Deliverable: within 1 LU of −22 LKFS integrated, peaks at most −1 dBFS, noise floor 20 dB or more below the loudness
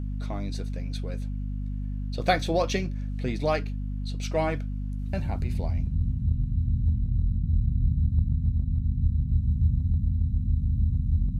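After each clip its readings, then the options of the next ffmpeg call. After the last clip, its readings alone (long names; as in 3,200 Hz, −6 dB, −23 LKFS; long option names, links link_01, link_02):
mains hum 50 Hz; hum harmonics up to 250 Hz; level of the hum −28 dBFS; integrated loudness −28.0 LKFS; sample peak −9.0 dBFS; target loudness −22.0 LKFS
→ -af "bandreject=frequency=50:width_type=h:width=6,bandreject=frequency=100:width_type=h:width=6,bandreject=frequency=150:width_type=h:width=6,bandreject=frequency=200:width_type=h:width=6,bandreject=frequency=250:width_type=h:width=6"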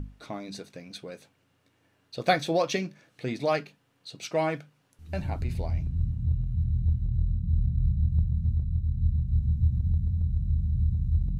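mains hum none found; integrated loudness −28.5 LKFS; sample peak −9.5 dBFS; target loudness −22.0 LKFS
→ -af "volume=6.5dB"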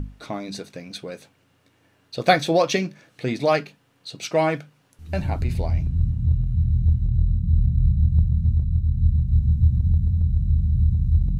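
integrated loudness −22.0 LKFS; sample peak −3.0 dBFS; background noise floor −63 dBFS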